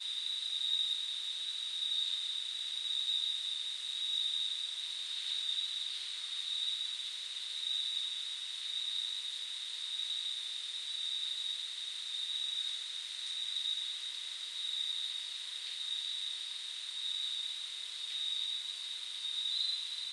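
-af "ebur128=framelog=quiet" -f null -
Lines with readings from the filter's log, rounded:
Integrated loudness:
  I:         -35.1 LUFS
  Threshold: -45.1 LUFS
Loudness range:
  LRA:         3.0 LU
  Threshold: -55.3 LUFS
  LRA low:   -36.5 LUFS
  LRA high:  -33.4 LUFS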